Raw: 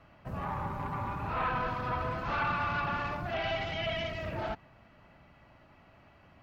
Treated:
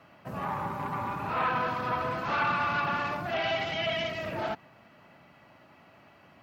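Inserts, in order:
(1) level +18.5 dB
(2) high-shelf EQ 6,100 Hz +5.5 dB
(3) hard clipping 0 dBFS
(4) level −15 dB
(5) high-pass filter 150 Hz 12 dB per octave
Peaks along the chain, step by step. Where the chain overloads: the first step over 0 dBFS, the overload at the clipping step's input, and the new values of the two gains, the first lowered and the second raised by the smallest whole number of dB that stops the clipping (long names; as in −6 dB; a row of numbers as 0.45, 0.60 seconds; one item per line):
−2.0, −2.0, −2.0, −17.0, −18.5 dBFS
no step passes full scale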